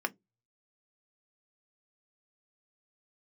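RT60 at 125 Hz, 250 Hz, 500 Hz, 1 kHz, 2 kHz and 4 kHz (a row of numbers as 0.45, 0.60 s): 0.75, 0.25, 0.20, 0.15, 0.10, 0.10 s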